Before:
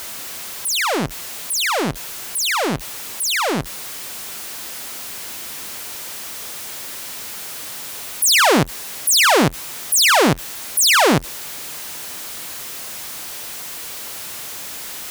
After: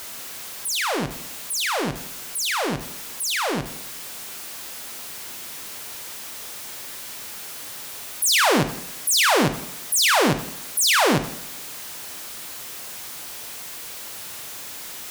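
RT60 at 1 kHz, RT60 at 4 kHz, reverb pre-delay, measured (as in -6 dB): 0.80 s, 0.75 s, 7 ms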